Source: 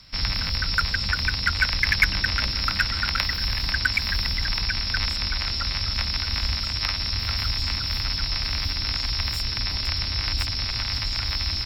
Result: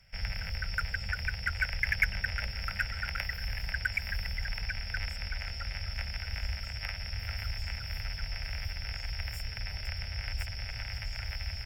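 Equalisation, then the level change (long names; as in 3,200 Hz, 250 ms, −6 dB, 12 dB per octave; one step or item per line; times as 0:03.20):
phaser with its sweep stopped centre 1,100 Hz, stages 6
−7.0 dB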